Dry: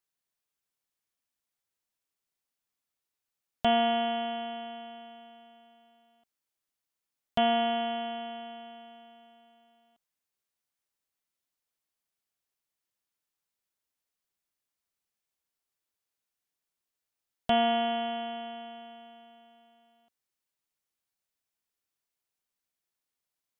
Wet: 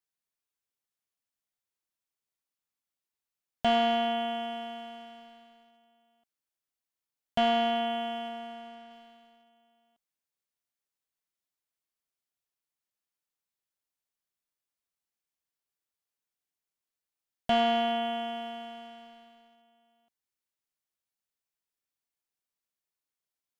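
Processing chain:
0:08.28–0:08.91: low-pass filter 3,100 Hz
leveller curve on the samples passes 1
level −2.5 dB

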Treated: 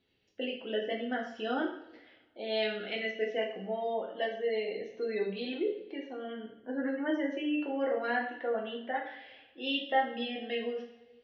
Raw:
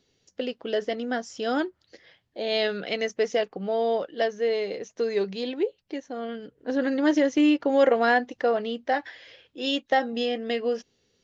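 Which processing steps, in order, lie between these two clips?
gate on every frequency bin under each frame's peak −30 dB strong
transistor ladder low-pass 3,700 Hz, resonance 35%
coupled-rooms reverb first 0.57 s, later 1.7 s, from −18 dB, DRR −2.5 dB
speech leveller within 4 dB 2 s
level −5 dB

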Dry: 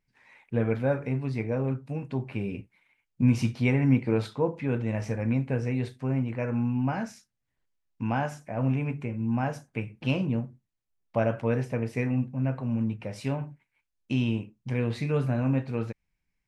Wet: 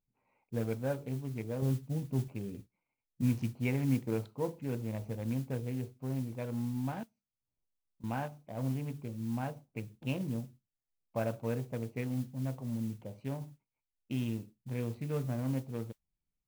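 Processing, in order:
adaptive Wiener filter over 25 samples
0:01.62–0:02.28: low-shelf EQ 270 Hz +9.5 dB
0:07.03–0:08.04: downward compressor 4 to 1, threshold −55 dBFS, peak gain reduction 21.5 dB
noise that follows the level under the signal 23 dB
level −8 dB

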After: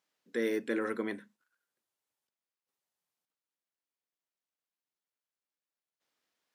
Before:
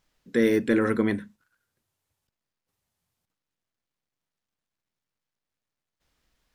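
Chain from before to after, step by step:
high-pass filter 310 Hz 12 dB per octave
level −8 dB

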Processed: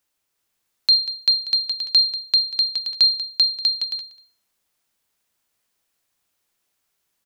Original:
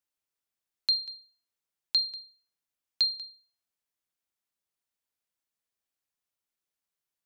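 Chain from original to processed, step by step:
bouncing-ball delay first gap 390 ms, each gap 0.65×, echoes 5
boost into a limiter +20.5 dB
level −7.5 dB

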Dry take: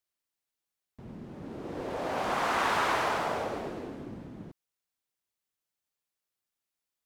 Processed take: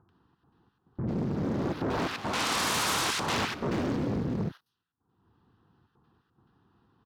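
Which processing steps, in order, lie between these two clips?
low-shelf EQ 170 Hz +8.5 dB
phaser with its sweep stopped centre 2,200 Hz, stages 6
in parallel at −7.5 dB: sine wavefolder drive 18 dB, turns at −19 dBFS
on the sum: low-pass that shuts in the quiet parts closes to 810 Hz, open at −28.5 dBFS
gate pattern "xxxx.xxx..xxxxxx" 174 BPM −12 dB
upward compression, threshold −44 dBFS
high-pass filter 94 Hz 12 dB per octave
multiband delay without the direct sound lows, highs 90 ms, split 1,300 Hz
highs frequency-modulated by the lows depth 0.67 ms

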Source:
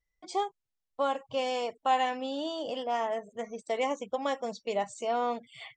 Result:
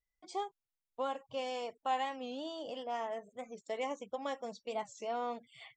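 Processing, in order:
wow of a warped record 45 rpm, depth 160 cents
level −7.5 dB

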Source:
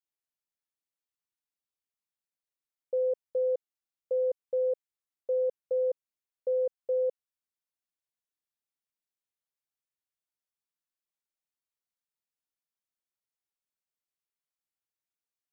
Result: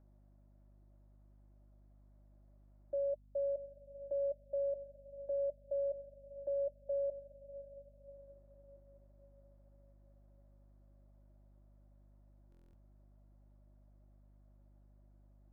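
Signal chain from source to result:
adaptive Wiener filter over 15 samples
upward compression, threshold −37 dBFS
frequency shifter +48 Hz
pair of resonant band-passes 450 Hz, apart 0.81 octaves
mains hum 50 Hz, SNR 20 dB
feedback delay with all-pass diffusion 641 ms, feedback 51%, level −14 dB
buffer that repeats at 0:12.50, samples 1,024, times 9
level −3.5 dB

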